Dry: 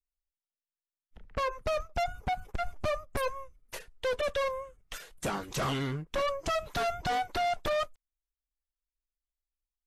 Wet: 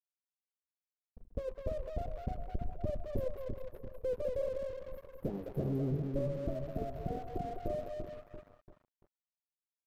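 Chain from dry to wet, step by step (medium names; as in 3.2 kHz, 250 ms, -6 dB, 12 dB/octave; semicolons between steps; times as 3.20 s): inverse Chebyshev band-stop 2.1–6.1 kHz, stop band 80 dB; two-band feedback delay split 420 Hz, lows 341 ms, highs 202 ms, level -4 dB; crossover distortion -54 dBFS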